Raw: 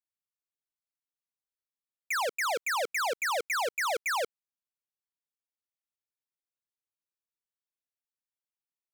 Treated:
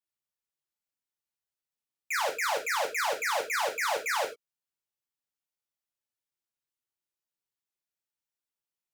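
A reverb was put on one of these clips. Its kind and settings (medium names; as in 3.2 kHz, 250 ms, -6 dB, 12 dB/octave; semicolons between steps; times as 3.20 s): gated-style reverb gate 120 ms falling, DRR 0.5 dB; trim -2 dB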